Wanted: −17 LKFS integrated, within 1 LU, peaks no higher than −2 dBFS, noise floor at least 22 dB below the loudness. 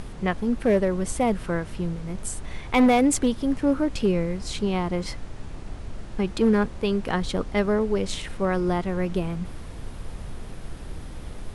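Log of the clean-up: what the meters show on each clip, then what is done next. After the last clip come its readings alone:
share of clipped samples 0.5%; peaks flattened at −13.5 dBFS; background noise floor −38 dBFS; target noise floor −47 dBFS; integrated loudness −25.0 LKFS; sample peak −13.5 dBFS; target loudness −17.0 LKFS
→ clipped peaks rebuilt −13.5 dBFS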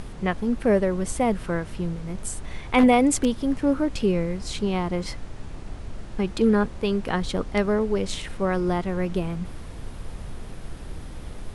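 share of clipped samples 0.0%; background noise floor −38 dBFS; target noise floor −47 dBFS
→ noise reduction from a noise print 9 dB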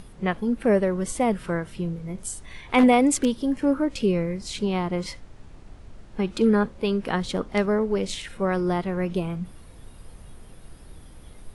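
background noise floor −46 dBFS; target noise floor −47 dBFS
→ noise reduction from a noise print 6 dB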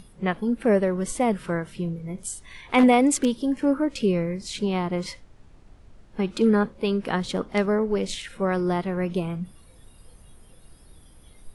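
background noise floor −52 dBFS; integrated loudness −24.5 LKFS; sample peak −7.0 dBFS; target loudness −17.0 LKFS
→ level +7.5 dB
brickwall limiter −2 dBFS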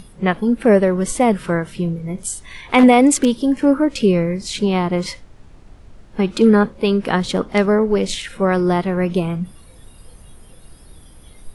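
integrated loudness −17.5 LKFS; sample peak −2.0 dBFS; background noise floor −44 dBFS

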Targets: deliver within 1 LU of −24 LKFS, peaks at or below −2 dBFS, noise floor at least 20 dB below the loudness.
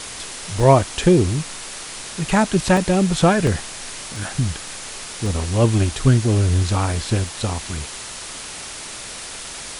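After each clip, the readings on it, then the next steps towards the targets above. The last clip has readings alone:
number of dropouts 8; longest dropout 1.7 ms; background noise floor −34 dBFS; target noise floor −41 dBFS; integrated loudness −20.5 LKFS; sample peak −1.0 dBFS; target loudness −24.0 LKFS
→ repair the gap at 0:00.60/0:01.34/0:02.77/0:03.47/0:04.16/0:04.68/0:05.26/0:07.27, 1.7 ms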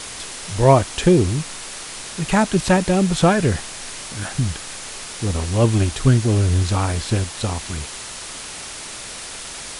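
number of dropouts 0; background noise floor −34 dBFS; target noise floor −41 dBFS
→ broadband denoise 7 dB, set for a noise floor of −34 dBFS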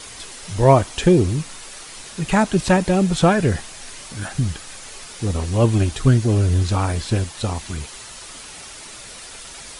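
background noise floor −38 dBFS; target noise floor −39 dBFS
→ broadband denoise 6 dB, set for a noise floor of −38 dBFS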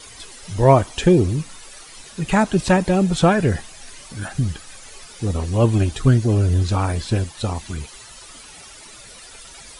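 background noise floor −42 dBFS; integrated loudness −19.0 LKFS; sample peak −1.5 dBFS; target loudness −24.0 LKFS
→ level −5 dB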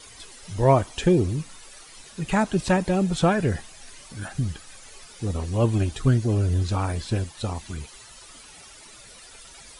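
integrated loudness −24.0 LKFS; sample peak −6.5 dBFS; background noise floor −47 dBFS

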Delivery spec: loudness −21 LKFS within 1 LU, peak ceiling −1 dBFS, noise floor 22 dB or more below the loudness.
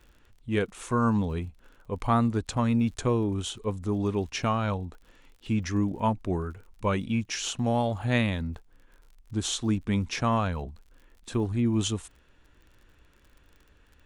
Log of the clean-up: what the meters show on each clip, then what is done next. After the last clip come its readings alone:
crackle rate 42 per second; integrated loudness −28.5 LKFS; sample peak −11.0 dBFS; target loudness −21.0 LKFS
→ click removal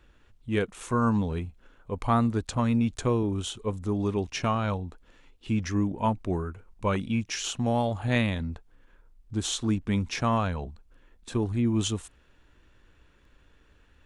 crackle rate 0.071 per second; integrated loudness −28.5 LKFS; sample peak −11.0 dBFS; target loudness −21.0 LKFS
→ level +7.5 dB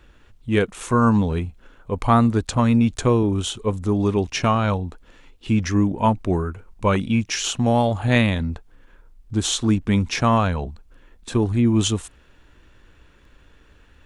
integrated loudness −21.0 LKFS; sample peak −3.5 dBFS; background noise floor −53 dBFS

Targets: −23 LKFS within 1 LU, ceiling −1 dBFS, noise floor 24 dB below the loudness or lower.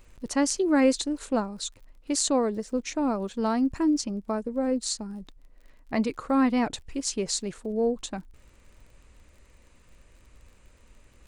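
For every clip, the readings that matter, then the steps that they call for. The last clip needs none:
crackle rate 43 per second; integrated loudness −27.0 LKFS; sample peak −8.5 dBFS; target loudness −23.0 LKFS
→ click removal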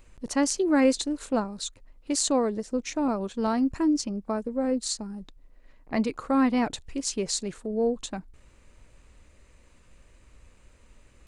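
crackle rate 0.18 per second; integrated loudness −27.5 LKFS; sample peak −8.5 dBFS; target loudness −23.0 LKFS
→ level +4.5 dB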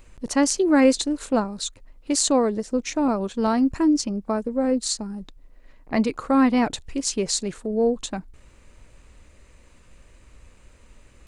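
integrated loudness −23.0 LKFS; sample peak −4.0 dBFS; background noise floor −53 dBFS

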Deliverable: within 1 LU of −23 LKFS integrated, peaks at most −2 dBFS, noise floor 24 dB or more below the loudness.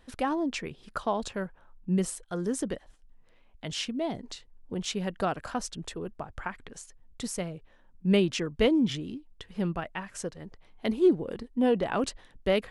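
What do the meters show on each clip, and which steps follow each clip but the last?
number of dropouts 1; longest dropout 3.1 ms; integrated loudness −30.5 LKFS; sample peak −11.5 dBFS; target loudness −23.0 LKFS
→ repair the gap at 0:04.85, 3.1 ms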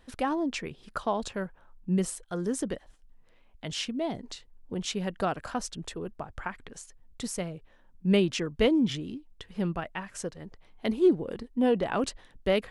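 number of dropouts 0; integrated loudness −30.5 LKFS; sample peak −11.5 dBFS; target loudness −23.0 LKFS
→ level +7.5 dB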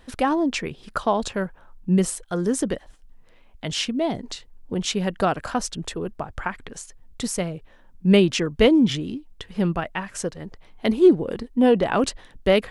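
integrated loudness −23.0 LKFS; sample peak −4.0 dBFS; background noise floor −52 dBFS

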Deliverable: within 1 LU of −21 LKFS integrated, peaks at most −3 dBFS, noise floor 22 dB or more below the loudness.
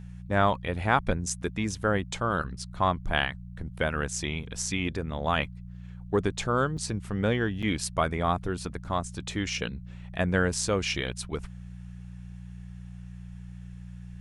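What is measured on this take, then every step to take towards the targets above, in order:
number of dropouts 2; longest dropout 6.3 ms; mains hum 60 Hz; hum harmonics up to 180 Hz; level of the hum −39 dBFS; integrated loudness −29.0 LKFS; sample peak −7.5 dBFS; target loudness −21.0 LKFS
→ repair the gap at 0:06.77/0:07.62, 6.3 ms
hum removal 60 Hz, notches 3
level +8 dB
brickwall limiter −3 dBFS

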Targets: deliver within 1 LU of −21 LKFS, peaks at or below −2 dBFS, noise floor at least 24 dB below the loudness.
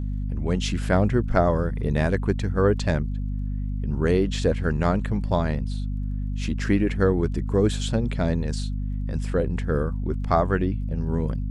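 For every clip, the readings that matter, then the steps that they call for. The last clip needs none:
crackle rate 22 per second; mains hum 50 Hz; hum harmonics up to 250 Hz; level of the hum −25 dBFS; integrated loudness −25.0 LKFS; sample peak −6.0 dBFS; target loudness −21.0 LKFS
→ click removal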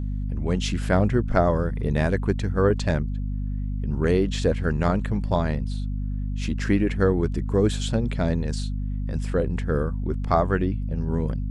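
crackle rate 0 per second; mains hum 50 Hz; hum harmonics up to 250 Hz; level of the hum −25 dBFS
→ hum removal 50 Hz, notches 5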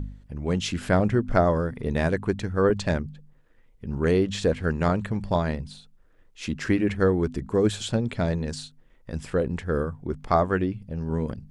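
mains hum none found; integrated loudness −25.5 LKFS; sample peak −5.0 dBFS; target loudness −21.0 LKFS
→ level +4.5 dB
brickwall limiter −2 dBFS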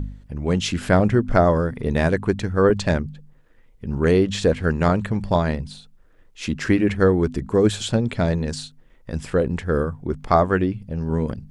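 integrated loudness −21.0 LKFS; sample peak −2.0 dBFS; background noise floor −53 dBFS

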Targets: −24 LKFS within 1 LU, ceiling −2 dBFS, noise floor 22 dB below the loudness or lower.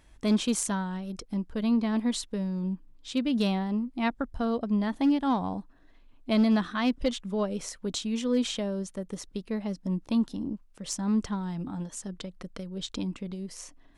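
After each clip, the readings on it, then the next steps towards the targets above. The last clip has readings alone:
share of clipped samples 0.3%; peaks flattened at −17.5 dBFS; integrated loudness −30.0 LKFS; sample peak −17.5 dBFS; target loudness −24.0 LKFS
→ clipped peaks rebuilt −17.5 dBFS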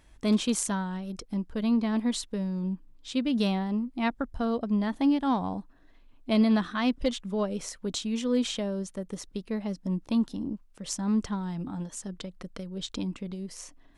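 share of clipped samples 0.0%; integrated loudness −30.0 LKFS; sample peak −13.0 dBFS; target loudness −24.0 LKFS
→ level +6 dB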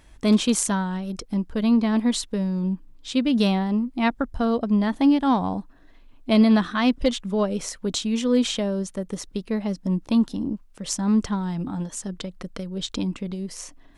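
integrated loudness −24.0 LKFS; sample peak −7.0 dBFS; background noise floor −51 dBFS

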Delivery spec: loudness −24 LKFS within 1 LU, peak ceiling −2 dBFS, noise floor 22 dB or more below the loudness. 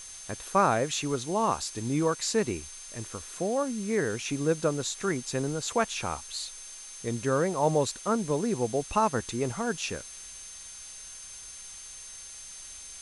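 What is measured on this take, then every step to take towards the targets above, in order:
interfering tone 6,300 Hz; level of the tone −45 dBFS; background noise floor −45 dBFS; target noise floor −52 dBFS; integrated loudness −29.5 LKFS; sample peak −11.5 dBFS; target loudness −24.0 LKFS
→ notch filter 6,300 Hz, Q 30
noise reduction from a noise print 7 dB
level +5.5 dB

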